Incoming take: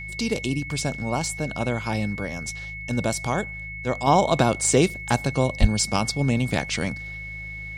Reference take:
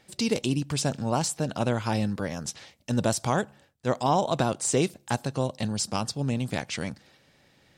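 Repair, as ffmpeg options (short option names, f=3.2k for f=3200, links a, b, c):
-filter_complex "[0:a]bandreject=f=52.7:t=h:w=4,bandreject=f=105.4:t=h:w=4,bandreject=f=158.1:t=h:w=4,bandreject=f=2.2k:w=30,asplit=3[a][b][c];[a]afade=t=out:st=5.6:d=0.02[d];[b]highpass=f=140:w=0.5412,highpass=f=140:w=1.3066,afade=t=in:st=5.6:d=0.02,afade=t=out:st=5.72:d=0.02[e];[c]afade=t=in:st=5.72:d=0.02[f];[d][e][f]amix=inputs=3:normalize=0,asetnsamples=n=441:p=0,asendcmd='4.07 volume volume -5.5dB',volume=0dB"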